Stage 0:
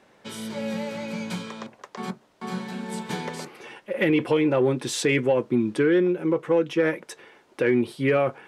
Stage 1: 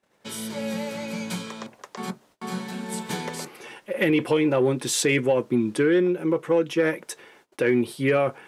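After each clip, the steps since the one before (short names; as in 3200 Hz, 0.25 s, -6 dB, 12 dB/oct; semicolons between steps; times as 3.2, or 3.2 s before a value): high shelf 7400 Hz +11.5 dB; gate -55 dBFS, range -21 dB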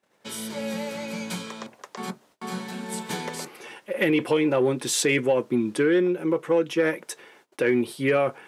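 low shelf 98 Hz -10 dB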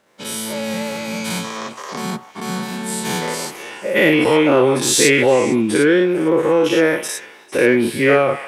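spectral dilation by 0.12 s; delay with a stepping band-pass 0.151 s, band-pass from 950 Hz, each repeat 1.4 oct, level -11 dB; gain +4 dB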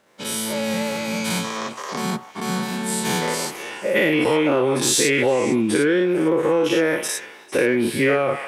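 compressor, threshold -15 dBFS, peak gain reduction 6.5 dB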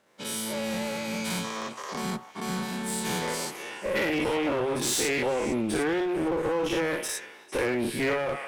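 one-sided clip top -22.5 dBFS; gain -6 dB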